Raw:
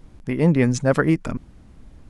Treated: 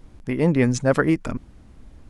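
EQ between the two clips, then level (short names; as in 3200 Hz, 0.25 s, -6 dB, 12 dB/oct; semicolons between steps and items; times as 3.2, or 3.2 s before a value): bell 160 Hz -4 dB 0.47 oct; 0.0 dB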